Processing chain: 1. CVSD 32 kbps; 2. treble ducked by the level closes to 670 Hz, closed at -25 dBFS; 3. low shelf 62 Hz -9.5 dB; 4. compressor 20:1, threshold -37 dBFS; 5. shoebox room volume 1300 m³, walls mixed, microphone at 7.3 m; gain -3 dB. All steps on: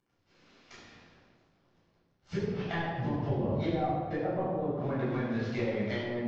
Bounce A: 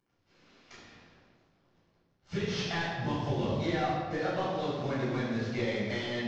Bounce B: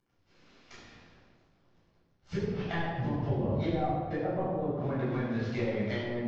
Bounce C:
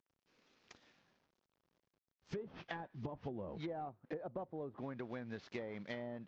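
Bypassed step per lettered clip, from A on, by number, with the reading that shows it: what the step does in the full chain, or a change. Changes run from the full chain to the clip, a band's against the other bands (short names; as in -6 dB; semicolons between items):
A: 2, 4 kHz band +9.0 dB; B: 3, 125 Hz band +1.5 dB; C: 5, echo-to-direct 9.0 dB to none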